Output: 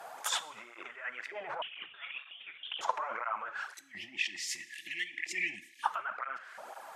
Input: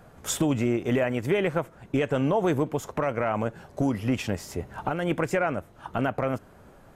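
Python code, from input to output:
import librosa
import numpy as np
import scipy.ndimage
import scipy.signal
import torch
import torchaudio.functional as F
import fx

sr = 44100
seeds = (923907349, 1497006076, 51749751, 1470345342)

y = fx.spec_erase(x, sr, start_s=3.74, length_s=2.09, low_hz=380.0, high_hz=1700.0)
y = fx.env_lowpass_down(y, sr, base_hz=2100.0, full_db=-23.0)
y = fx.high_shelf(y, sr, hz=2300.0, db=6.5)
y = fx.over_compress(y, sr, threshold_db=-33.0, ratio=-1.0)
y = fx.rev_double_slope(y, sr, seeds[0], early_s=0.68, late_s=2.0, knee_db=-16, drr_db=13.5)
y = fx.filter_lfo_highpass(y, sr, shape='saw_up', hz=0.76, low_hz=720.0, high_hz=1700.0, q=3.1)
y = fx.freq_invert(y, sr, carrier_hz=3900, at=(1.62, 2.81))
y = fx.flanger_cancel(y, sr, hz=2.0, depth_ms=4.3)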